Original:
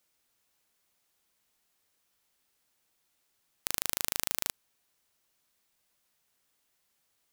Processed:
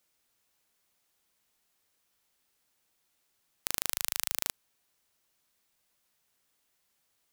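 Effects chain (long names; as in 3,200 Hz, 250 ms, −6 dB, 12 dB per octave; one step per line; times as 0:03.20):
0:03.91–0:04.42: parametric band 210 Hz −11.5 dB 2.8 octaves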